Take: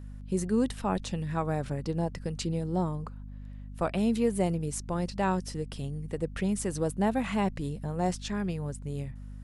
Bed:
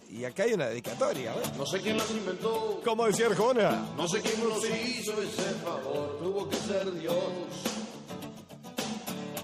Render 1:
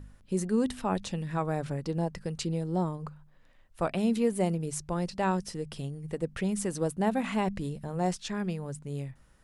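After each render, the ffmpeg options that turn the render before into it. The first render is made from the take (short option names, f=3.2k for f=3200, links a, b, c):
-af "bandreject=f=50:t=h:w=4,bandreject=f=100:t=h:w=4,bandreject=f=150:t=h:w=4,bandreject=f=200:t=h:w=4,bandreject=f=250:t=h:w=4"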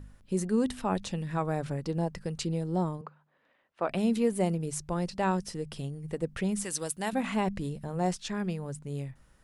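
-filter_complex "[0:a]asettb=1/sr,asplit=3[a][b][c];[a]atrim=end=3.014[d];[b]atrim=start=3.01:end=3.89,asetpts=PTS-STARTPTS,afade=t=in:d=0.004:c=qsin,afade=t=out:st=0.876:d=0.004:c=qsin,highpass=300,lowpass=3k[e];[c]atrim=start=3.886[f];[d][e]acrossfade=d=0.004:c1=hsin:c2=qsin[g];[g][f]acrossfade=d=0.004:c1=qsin:c2=hsin,asettb=1/sr,asplit=3[h][i][j];[h]atrim=end=6.644[k];[i]atrim=start=6.64:end=7.13,asetpts=PTS-STARTPTS,afade=t=in:d=0.004:c=qsin,afade=t=out:st=0.486:d=0.004:c=qsin,tiltshelf=f=1.3k:g=-9.5[l];[j]atrim=start=7.126[m];[k][l]acrossfade=d=0.004:c1=hsin:c2=qsin[n];[n][m]acrossfade=d=0.004:c1=qsin:c2=hsin"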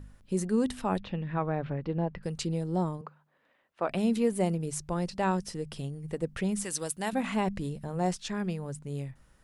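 -filter_complex "[0:a]asettb=1/sr,asplit=3[a][b][c];[a]atrim=end=0.994[d];[b]atrim=start=0.99:end=2.23,asetpts=PTS-STARTPTS,afade=t=in:d=0.004:c=qsin,afade=t=out:st=1.236:d=0.004:c=qsin,lowpass=f=3.2k:w=0.5412,lowpass=f=3.2k:w=1.3066[e];[c]atrim=start=2.226[f];[d][e]acrossfade=d=0.004:c1=hsin:c2=qsin[g];[g][f]acrossfade=d=0.004:c1=qsin:c2=hsin"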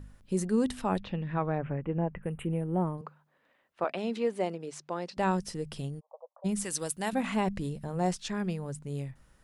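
-filter_complex "[0:a]asettb=1/sr,asplit=3[a][b][c];[a]atrim=end=1.584[d];[b]atrim=start=1.58:end=2.98,asetpts=PTS-STARTPTS,afade=t=in:d=0.004:c=qsin,afade=t=out:st=1.396:d=0.004:c=qsin,asuperstop=centerf=5300:order=8:qfactor=0.84[e];[c]atrim=start=2.976[f];[d][e]acrossfade=d=0.004:c1=hsin:c2=qsin[g];[g][f]acrossfade=d=0.004:c1=qsin:c2=hsin,asettb=1/sr,asplit=3[h][i][j];[h]atrim=end=3.844[k];[i]atrim=start=3.84:end=5.17,asetpts=PTS-STARTPTS,afade=t=in:d=0.004:c=qsin,afade=t=out:st=1.326:d=0.004:c=qsin,highpass=340,lowpass=4.8k[l];[j]atrim=start=5.166[m];[k][l]acrossfade=d=0.004:c1=hsin:c2=qsin[n];[n][m]acrossfade=d=0.004:c1=qsin:c2=hsin,asplit=3[o][p][q];[o]afade=t=out:st=5.99:d=0.02[r];[p]asuperpass=centerf=790:order=12:qfactor=1.4,afade=t=in:st=5.99:d=0.02,afade=t=out:st=6.44:d=0.02[s];[q]afade=t=in:st=6.44:d=0.02[t];[r][s][t]amix=inputs=3:normalize=0"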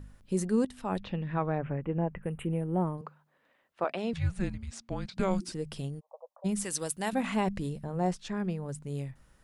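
-filter_complex "[0:a]asettb=1/sr,asplit=3[a][b][c];[a]atrim=end=4.134[d];[b]atrim=start=4.13:end=5.52,asetpts=PTS-STARTPTS,afade=t=in:d=0.004:c=qsin,afade=t=out:st=1.386:d=0.004:c=qsin,afreqshift=-380[e];[c]atrim=start=5.516[f];[d][e]acrossfade=d=0.004:c1=hsin:c2=qsin[g];[g][f]acrossfade=d=0.004:c1=qsin:c2=hsin,asettb=1/sr,asplit=3[h][i][j];[h]atrim=end=7.814[k];[i]atrim=start=7.81:end=8.69,asetpts=PTS-STARTPTS,afade=t=in:d=0.004:c=qsin,afade=t=out:st=0.876:d=0.004:c=qsin,highshelf=f=2.4k:g=-8[l];[j]atrim=start=8.686[m];[k][l]acrossfade=d=0.004:c1=hsin:c2=qsin[n];[n][m]acrossfade=d=0.004:c1=qsin:c2=hsin,asplit=2[o][p];[o]atrim=end=0.65,asetpts=PTS-STARTPTS,afade=t=out:st=0.646:d=0.004:c=hsin:silence=0.177828[q];[p]atrim=start=0.65,asetpts=PTS-STARTPTS,afade=t=in:d=0.41:silence=0.177828[r];[q][r]concat=n=2:v=0:a=1"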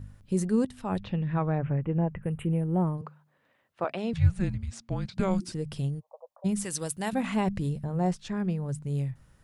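-af "equalizer=f=110:t=o:w=1.1:g=10.5"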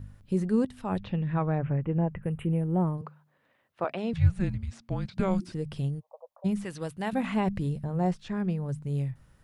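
-filter_complex "[0:a]acrossover=split=3700[a][b];[b]acompressor=threshold=-51dB:ratio=4:attack=1:release=60[c];[a][c]amix=inputs=2:normalize=0,equalizer=f=7.3k:t=o:w=1:g=-3"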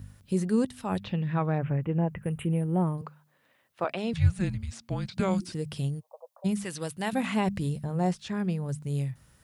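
-af "highpass=53,highshelf=f=3.3k:g=11"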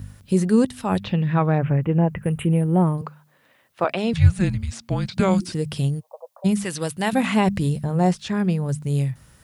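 -af "volume=8dB"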